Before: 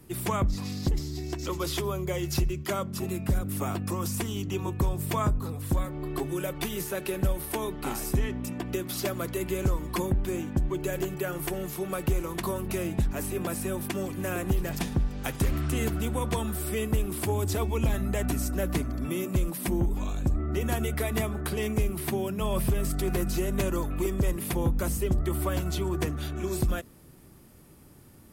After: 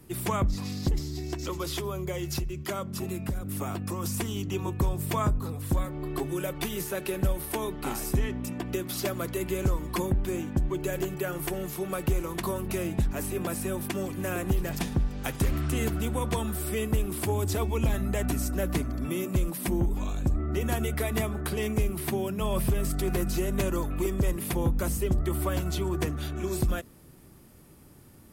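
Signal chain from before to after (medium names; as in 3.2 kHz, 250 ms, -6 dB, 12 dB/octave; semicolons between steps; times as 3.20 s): 1.37–4.04 s: compression, threshold -28 dBFS, peak gain reduction 7 dB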